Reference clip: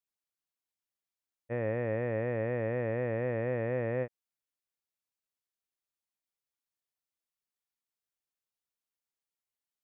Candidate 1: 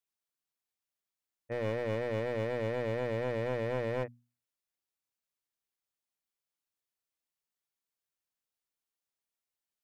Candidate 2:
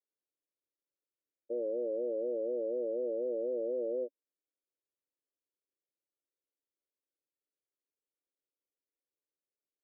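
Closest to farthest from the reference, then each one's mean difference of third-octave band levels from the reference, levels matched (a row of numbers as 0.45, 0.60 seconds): 1, 2; 5.5, 12.5 decibels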